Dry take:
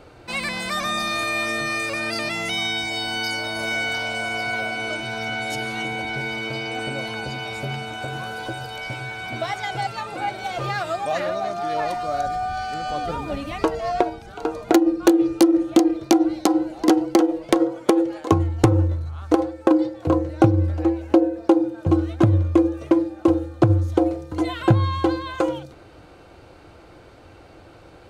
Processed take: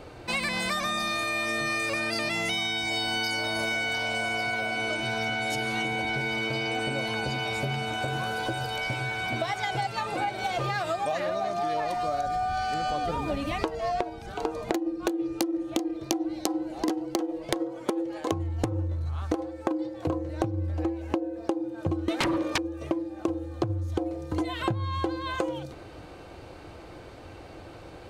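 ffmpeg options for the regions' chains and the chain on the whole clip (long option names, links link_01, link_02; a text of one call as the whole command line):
ffmpeg -i in.wav -filter_complex "[0:a]asettb=1/sr,asplit=3[link_01][link_02][link_03];[link_01]atrim=end=22.084[link_04];[link_02]atrim=start=22.08:end=22.58,asetpts=PTS-STARTPTS,afade=type=in:duration=0.004:curve=qsin,afade=type=out:start_time=0.496:duration=0.004:curve=qsin,highpass=frequency=270:width=0.5412,highpass=frequency=270:width=1.3066,aeval=exprs='0.501*sin(PI/2*8.91*val(0)/0.501)':channel_layout=same[link_05];[link_03]atrim=start=22.576[link_06];[link_04][link_05]acrossfade=duration=0.004:curve1=hsin:curve2=qsin[link_07];[link_07][link_06]acrossfade=duration=0.004:curve1=qsin:curve2=hsin,bandreject=frequency=1400:width=14,acompressor=threshold=-27dB:ratio=12,volume=2dB" out.wav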